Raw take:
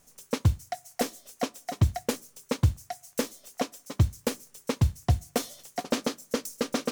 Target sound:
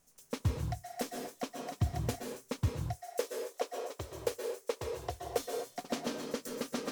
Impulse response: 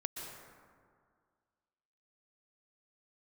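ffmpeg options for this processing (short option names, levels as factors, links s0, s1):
-filter_complex "[0:a]asettb=1/sr,asplit=3[s0][s1][s2];[s0]atrim=end=2.684[s3];[s1]atrim=start=2.68:end=5.38,asetpts=PTS-STARTPTS,afade=t=in:d=0.004:c=qsin,afade=t=out:st=2.696:d=0.004:c=qsin,lowshelf=f=300:t=q:w=3:g=-13[s4];[s2]atrim=start=5.376[s5];[s3][s4]acrossfade=d=0.004:c1=hsin:c2=qsin[s6];[s6][s5]acrossfade=d=0.004:c1=qsin:c2=hsin[s7];[1:a]atrim=start_sample=2205,afade=t=out:st=0.32:d=0.01,atrim=end_sample=14553[s8];[s7][s8]afir=irnorm=-1:irlink=0,volume=0.473"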